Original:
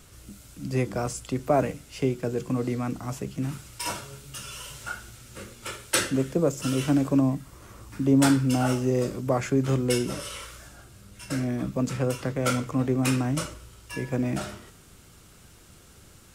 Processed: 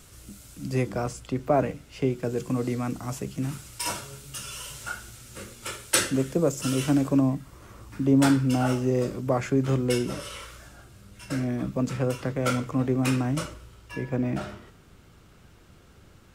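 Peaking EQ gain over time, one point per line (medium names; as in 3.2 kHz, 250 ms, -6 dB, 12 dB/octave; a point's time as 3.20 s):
peaking EQ 10 kHz 1.9 oct
0.67 s +2.5 dB
1.21 s -8.5 dB
1.99 s -8.5 dB
2.39 s +3 dB
6.91 s +3 dB
7.40 s -4.5 dB
13.40 s -4.5 dB
14.00 s -13 dB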